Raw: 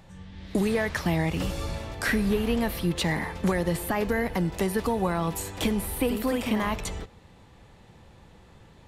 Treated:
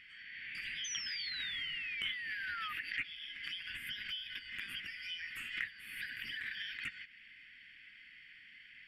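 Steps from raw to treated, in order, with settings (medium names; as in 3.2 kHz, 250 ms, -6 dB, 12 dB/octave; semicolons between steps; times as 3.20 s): four frequency bands reordered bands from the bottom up 4321; FFT filter 260 Hz 0 dB, 760 Hz -26 dB, 1.9 kHz +14 dB, 2.9 kHz +8 dB, 4.6 kHz -30 dB, 8.4 kHz -19 dB; compression 3:1, threshold -44 dBFS, peak gain reduction 19.5 dB; 0.84–2.73 s: painted sound fall 1.2–6.3 kHz -44 dBFS; 3.15–5.29 s: band-stop 4.3 kHz, Q 7.3; swell ahead of each attack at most 77 dB/s; trim +1 dB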